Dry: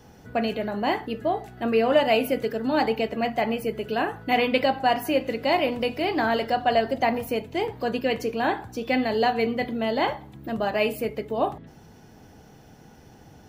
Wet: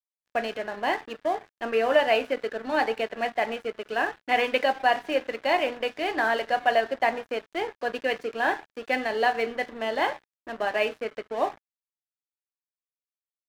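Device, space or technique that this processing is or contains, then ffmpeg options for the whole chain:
pocket radio on a weak battery: -af "highpass=390,lowpass=3.7k,aeval=exprs='sgn(val(0))*max(abs(val(0))-0.00891,0)':c=same,equalizer=f=1.7k:t=o:w=0.29:g=6.5"

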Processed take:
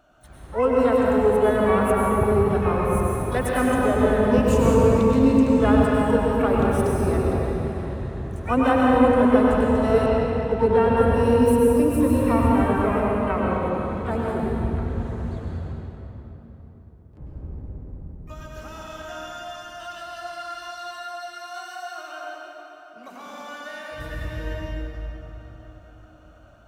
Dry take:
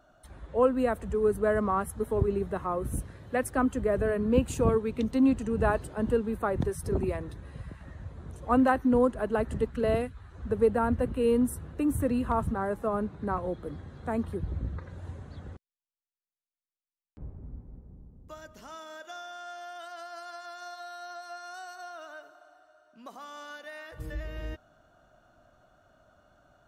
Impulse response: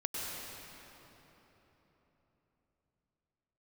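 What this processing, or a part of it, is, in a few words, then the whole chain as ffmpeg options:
shimmer-style reverb: -filter_complex "[0:a]asplit=2[a][b];[b]asetrate=88200,aresample=44100,atempo=0.5,volume=-12dB[c];[a][c]amix=inputs=2:normalize=0[d];[1:a]atrim=start_sample=2205[e];[d][e]afir=irnorm=-1:irlink=0,asettb=1/sr,asplit=3[f][g][h];[f]atrim=end=10.064[i];[g]atrim=start=10.06:end=10.97,asetpts=PTS-STARTPTS,afade=t=in:d=0.004:c=qsin,afade=t=out:st=0.906:d=0.004:c=qsin,lowpass=6.6k[j];[h]atrim=start=10.966[k];[i][j]acrossfade=d=0.004:c1=hsin:c2=qsin[l];[l][k]acrossfade=d=0.004:c1=qsin:c2=hsin,volume=3.5dB"

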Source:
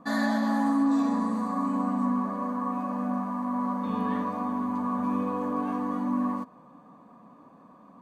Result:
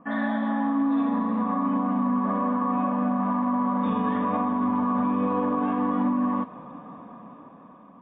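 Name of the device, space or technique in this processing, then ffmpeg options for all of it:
low-bitrate web radio: -af "dynaudnorm=f=470:g=7:m=13dB,alimiter=limit=-16.5dB:level=0:latency=1:release=108" -ar 8000 -c:a libmp3lame -b:a 24k

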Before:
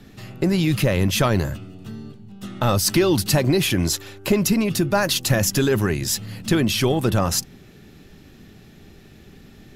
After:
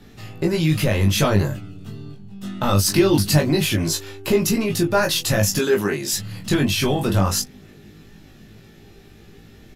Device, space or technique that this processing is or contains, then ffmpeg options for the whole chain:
double-tracked vocal: -filter_complex "[0:a]asplit=2[a][b];[b]adelay=20,volume=-6dB[c];[a][c]amix=inputs=2:normalize=0,flanger=delay=17.5:depth=3.7:speed=0.22,asettb=1/sr,asplit=3[d][e][f];[d]atrim=end=5.594[g];[e]atrim=start=5.59:end=6.13,asetpts=PTS-STARTPTS,afade=t=in:d=0.004:c=qsin,afade=t=out:st=0.536:d=0.004:c=qsin,highpass=240[h];[f]atrim=start=6.126[i];[g][h]acrossfade=d=0.004:c1=hsin:c2=qsin[j];[j][i]acrossfade=d=0.004:c1=qsin:c2=hsin,volume=2.5dB"

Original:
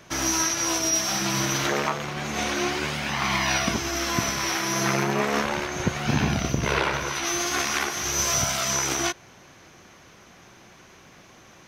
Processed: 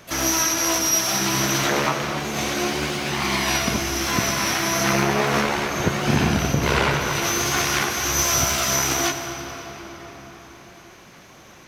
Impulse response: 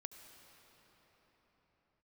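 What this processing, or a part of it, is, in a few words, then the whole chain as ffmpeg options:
shimmer-style reverb: -filter_complex "[0:a]asplit=2[a][b];[b]asetrate=88200,aresample=44100,atempo=0.5,volume=-10dB[c];[a][c]amix=inputs=2:normalize=0[d];[1:a]atrim=start_sample=2205[e];[d][e]afir=irnorm=-1:irlink=0,asettb=1/sr,asplit=3[f][g][h];[f]atrim=end=2.194[i];[g]atrim=start=2.19:end=4.07,asetpts=PTS-STARTPTS,afade=t=in:d=0.004:c=qsin,afade=t=out:st=1.876:d=0.004:c=qsin,equalizer=f=1.3k:w=0.54:g=-3.5[j];[h]atrim=start=4.066[k];[i][j]acrossfade=d=0.004:c1=hsin:c2=qsin[l];[l][k]acrossfade=d=0.004:c1=qsin:c2=hsin,volume=8.5dB"

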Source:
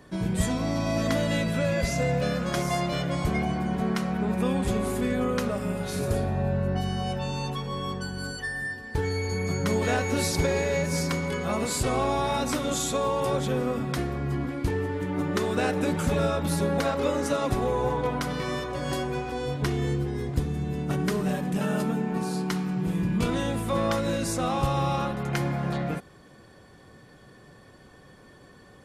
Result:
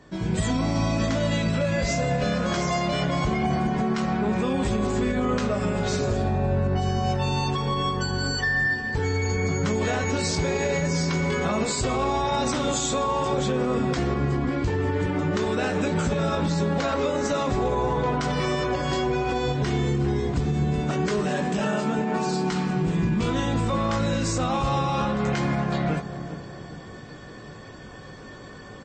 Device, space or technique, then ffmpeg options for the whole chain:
low-bitrate web radio: -filter_complex "[0:a]asplit=3[a][b][c];[a]afade=t=out:st=18.63:d=0.02[d];[b]lowpass=f=8.4k:w=0.5412,lowpass=f=8.4k:w=1.3066,afade=t=in:st=18.63:d=0.02,afade=t=out:st=19.33:d=0.02[e];[c]afade=t=in:st=19.33:d=0.02[f];[d][e][f]amix=inputs=3:normalize=0,asplit=2[g][h];[h]adelay=19,volume=-8dB[i];[g][i]amix=inputs=2:normalize=0,asettb=1/sr,asplit=3[j][k][l];[j]atrim=end=20.764[m];[k]atrim=start=20.76:end=22.27,asetpts=PTS-STARTPTS,afade=t=in:d=0.004:c=qsin,afade=t=out:st=1.506:d=0.004:c=qsin,highpass=f=250:p=1[n];[l]atrim=start=22.266[o];[m][n]acrossfade=d=0.004:c1=hsin:c2=qsin[p];[p][o]acrossfade=d=0.004:c1=qsin:c2=hsin,asplit=2[q][r];[r]adelay=401,lowpass=f=930:p=1,volume=-15dB,asplit=2[s][t];[t]adelay=401,lowpass=f=930:p=1,volume=0.48,asplit=2[u][v];[v]adelay=401,lowpass=f=930:p=1,volume=0.48,asplit=2[w][x];[x]adelay=401,lowpass=f=930:p=1,volume=0.48[y];[q][s][u][w][y]amix=inputs=5:normalize=0,dynaudnorm=f=270:g=3:m=9.5dB,alimiter=limit=-15.5dB:level=0:latency=1:release=121" -ar 22050 -c:a libmp3lame -b:a 32k

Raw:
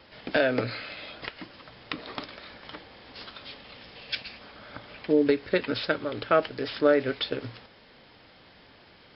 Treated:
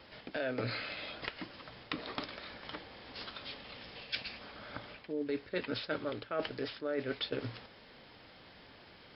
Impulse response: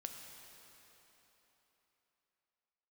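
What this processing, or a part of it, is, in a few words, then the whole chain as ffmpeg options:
compression on the reversed sound: -af "areverse,acompressor=threshold=-30dB:ratio=16,areverse,volume=-2dB"

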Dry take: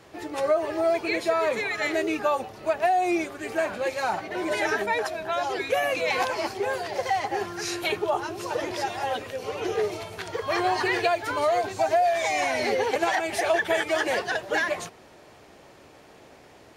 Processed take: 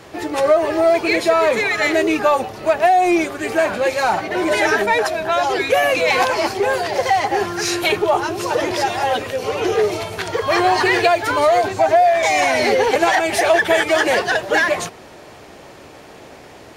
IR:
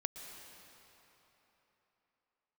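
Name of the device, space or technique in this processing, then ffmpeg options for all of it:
parallel distortion: -filter_complex "[0:a]asettb=1/sr,asplit=3[a][b][c];[a]atrim=end=11.684[d];[b]atrim=start=11.68:end=12.23,asetpts=PTS-STARTPTS,afade=t=in:d=0.004:c=qsin,afade=t=out:st=0.546:d=0.004:c=qsin,acrossover=split=2800[e][f];[f]acompressor=threshold=-47dB:ratio=4:attack=1:release=60[g];[e][g]amix=inputs=2:normalize=0[h];[c]atrim=start=12.226[i];[d][h]acrossfade=d=0.004:c1=hsin:c2=qsin[j];[j][i]acrossfade=d=0.004:c1=qsin:c2=hsin,asplit=2[k][l];[l]asoftclip=type=hard:threshold=-28.5dB,volume=-7.5dB[m];[k][m]amix=inputs=2:normalize=0,volume=7.5dB"

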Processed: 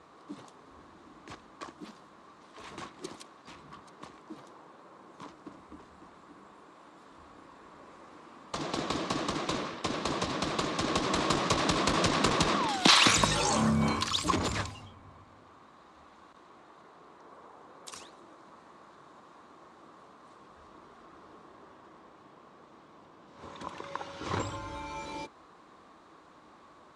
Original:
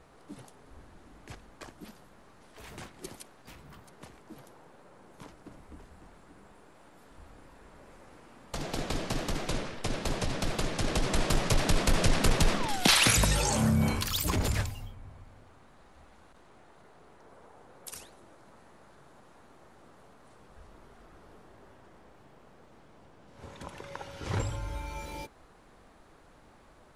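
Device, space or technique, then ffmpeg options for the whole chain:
car door speaker: -af "highpass=110,equalizer=f=120:t=q:w=4:g=-7,equalizer=f=320:t=q:w=4:g=5,equalizer=f=1.1k:t=q:w=4:g=10,equalizer=f=3.8k:t=q:w=4:g=4,lowpass=f=8.1k:w=0.5412,lowpass=f=8.1k:w=1.3066"

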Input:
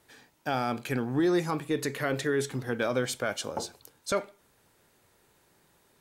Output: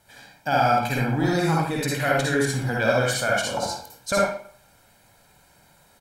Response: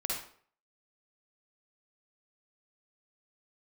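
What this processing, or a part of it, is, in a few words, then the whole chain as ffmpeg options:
microphone above a desk: -filter_complex "[0:a]aecho=1:1:1.3:0.61[a];[1:a]atrim=start_sample=2205[b];[a][b]afir=irnorm=-1:irlink=0,volume=3.5dB"

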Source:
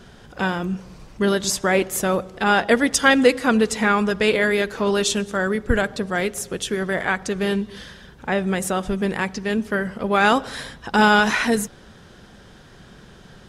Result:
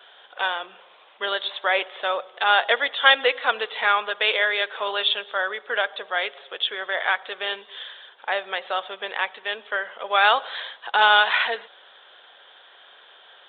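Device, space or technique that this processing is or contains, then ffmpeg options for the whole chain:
musical greeting card: -af "aresample=8000,aresample=44100,highpass=f=590:w=0.5412,highpass=f=590:w=1.3066,equalizer=f=3.4k:t=o:w=0.35:g=9"

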